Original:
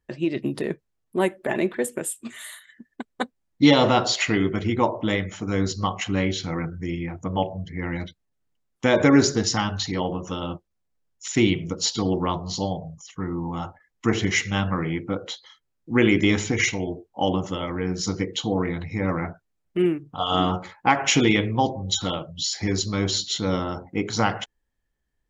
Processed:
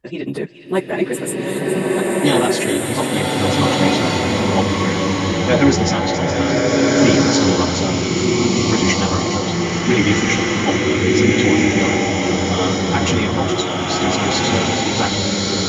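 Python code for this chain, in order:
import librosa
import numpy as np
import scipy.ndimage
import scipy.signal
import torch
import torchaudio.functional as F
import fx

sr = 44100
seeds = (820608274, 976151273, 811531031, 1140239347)

p1 = fx.rider(x, sr, range_db=5, speed_s=2.0)
p2 = fx.stretch_vocoder_free(p1, sr, factor=0.62)
p3 = p2 + fx.echo_wet_highpass(p2, sr, ms=418, feedback_pct=59, hz=2200.0, wet_db=-8.5, dry=0)
p4 = fx.rev_bloom(p3, sr, seeds[0], attack_ms=1550, drr_db=-5.0)
y = p4 * librosa.db_to_amplitude(4.0)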